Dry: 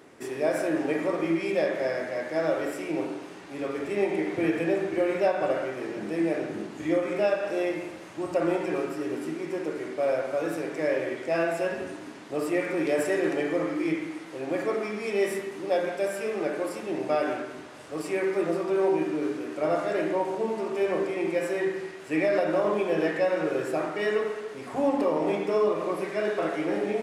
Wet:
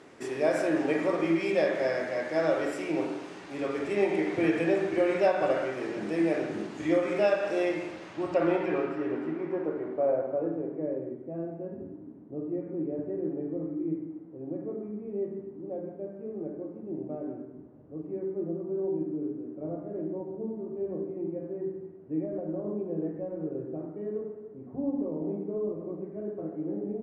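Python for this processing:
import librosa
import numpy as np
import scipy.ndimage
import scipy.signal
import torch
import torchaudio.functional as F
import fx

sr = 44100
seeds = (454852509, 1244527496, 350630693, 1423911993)

y = fx.filter_sweep_lowpass(x, sr, from_hz=7800.0, to_hz=270.0, start_s=7.63, end_s=11.19, q=0.79)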